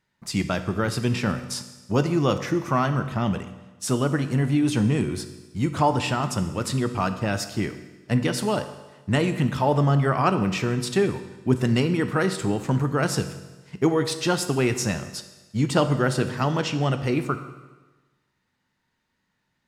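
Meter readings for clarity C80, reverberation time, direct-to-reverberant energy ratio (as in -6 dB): 13.0 dB, 1.2 s, 9.0 dB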